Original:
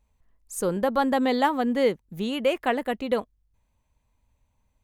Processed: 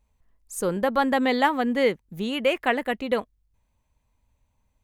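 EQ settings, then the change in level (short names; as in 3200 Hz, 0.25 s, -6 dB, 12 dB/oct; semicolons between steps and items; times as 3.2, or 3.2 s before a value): dynamic EQ 2100 Hz, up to +6 dB, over -40 dBFS, Q 1.2; 0.0 dB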